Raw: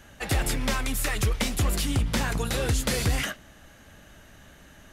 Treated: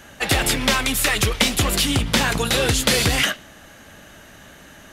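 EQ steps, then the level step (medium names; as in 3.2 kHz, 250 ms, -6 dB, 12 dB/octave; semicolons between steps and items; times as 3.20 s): dynamic bell 3.3 kHz, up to +5 dB, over -44 dBFS, Q 1.3; bass shelf 100 Hz -11 dB; +8.5 dB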